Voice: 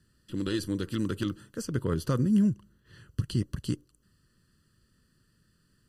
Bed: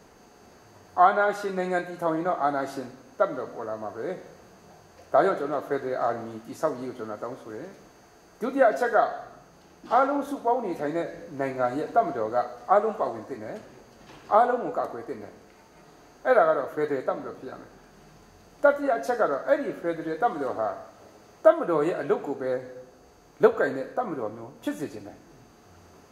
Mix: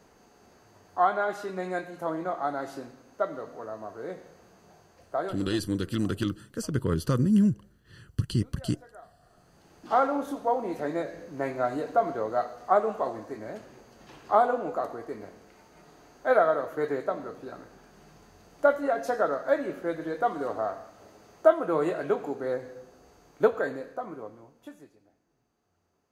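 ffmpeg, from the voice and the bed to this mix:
ffmpeg -i stem1.wav -i stem2.wav -filter_complex "[0:a]adelay=5000,volume=2dB[link_01];[1:a]volume=21dB,afade=type=out:start_time=4.81:duration=0.82:silence=0.0707946,afade=type=in:start_time=9.19:duration=0.67:silence=0.0501187,afade=type=out:start_time=23.13:duration=1.8:silence=0.0944061[link_02];[link_01][link_02]amix=inputs=2:normalize=0" out.wav

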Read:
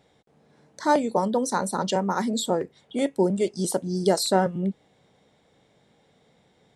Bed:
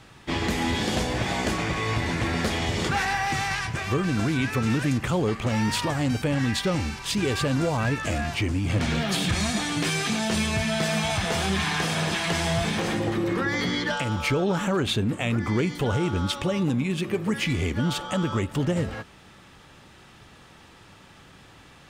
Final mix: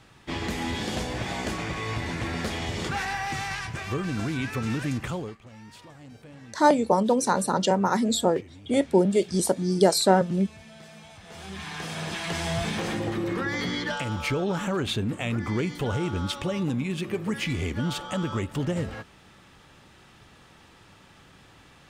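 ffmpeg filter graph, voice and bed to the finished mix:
ffmpeg -i stem1.wav -i stem2.wav -filter_complex "[0:a]adelay=5750,volume=2dB[link_01];[1:a]volume=15dB,afade=type=out:start_time=5.05:duration=0.33:silence=0.125893,afade=type=in:start_time=11.23:duration=1.38:silence=0.105925[link_02];[link_01][link_02]amix=inputs=2:normalize=0" out.wav

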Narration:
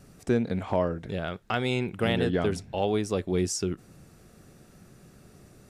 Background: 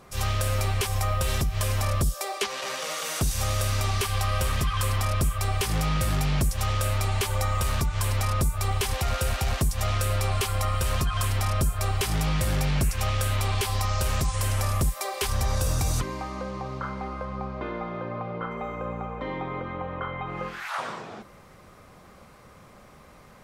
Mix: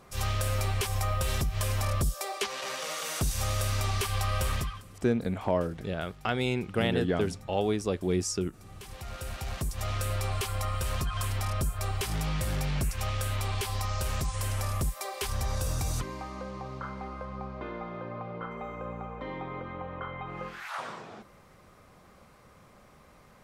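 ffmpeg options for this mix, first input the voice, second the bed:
ffmpeg -i stem1.wav -i stem2.wav -filter_complex "[0:a]adelay=4750,volume=-1.5dB[link_01];[1:a]volume=18dB,afade=type=out:start_time=4.54:duration=0.28:silence=0.0668344,afade=type=in:start_time=8.65:duration=1.39:silence=0.0841395[link_02];[link_01][link_02]amix=inputs=2:normalize=0" out.wav

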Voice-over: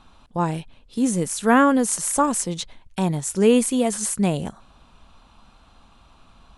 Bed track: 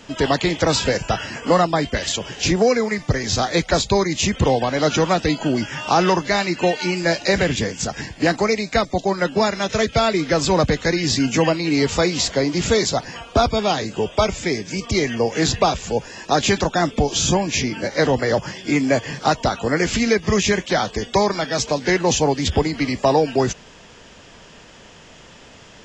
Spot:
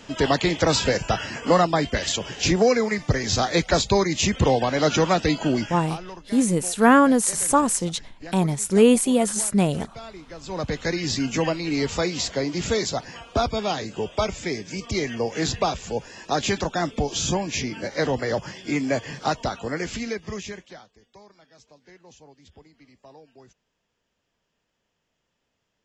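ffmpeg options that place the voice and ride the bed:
ffmpeg -i stem1.wav -i stem2.wav -filter_complex "[0:a]adelay=5350,volume=1dB[link_01];[1:a]volume=14dB,afade=type=out:start_time=5.54:duration=0.43:silence=0.1,afade=type=in:start_time=10.42:duration=0.41:silence=0.158489,afade=type=out:start_time=19.26:duration=1.62:silence=0.0473151[link_02];[link_01][link_02]amix=inputs=2:normalize=0" out.wav

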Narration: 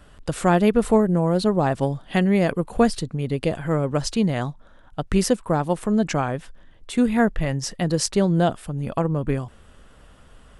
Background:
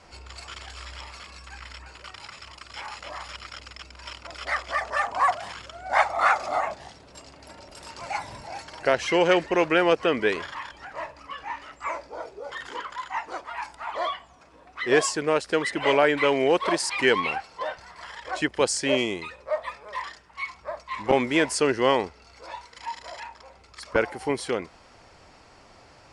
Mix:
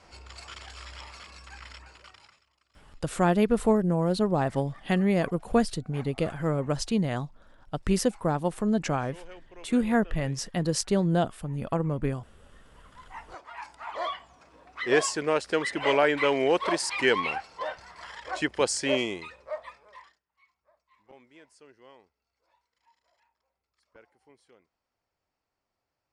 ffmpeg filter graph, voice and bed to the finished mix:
ffmpeg -i stem1.wav -i stem2.wav -filter_complex "[0:a]adelay=2750,volume=-5dB[link_01];[1:a]volume=21.5dB,afade=type=out:start_time=1.7:duration=0.74:silence=0.0630957,afade=type=in:start_time=12.78:duration=1.46:silence=0.0562341,afade=type=out:start_time=18.91:duration=1.29:silence=0.0316228[link_02];[link_01][link_02]amix=inputs=2:normalize=0" out.wav

